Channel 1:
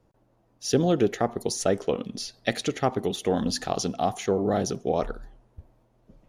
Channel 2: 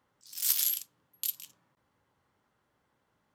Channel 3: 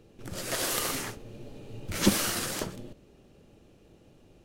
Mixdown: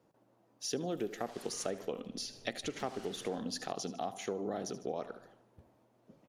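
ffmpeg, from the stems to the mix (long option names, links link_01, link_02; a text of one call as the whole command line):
ffmpeg -i stem1.wav -i stem2.wav -i stem3.wav -filter_complex "[0:a]highpass=180,volume=-2dB,asplit=3[link_01][link_02][link_03];[link_02]volume=-16dB[link_04];[1:a]acompressor=threshold=-40dB:ratio=2,adelay=550,volume=-14dB[link_05];[2:a]lowpass=5500,volume=24.5dB,asoftclip=hard,volume=-24.5dB,adelay=750,volume=-13dB[link_06];[link_03]apad=whole_len=171939[link_07];[link_05][link_07]sidechaincompress=threshold=-27dB:ratio=8:attack=16:release=1200[link_08];[link_04]aecho=0:1:76|152|228|304|380|456:1|0.41|0.168|0.0689|0.0283|0.0116[link_09];[link_01][link_08][link_06][link_09]amix=inputs=4:normalize=0,acompressor=threshold=-39dB:ratio=2.5" out.wav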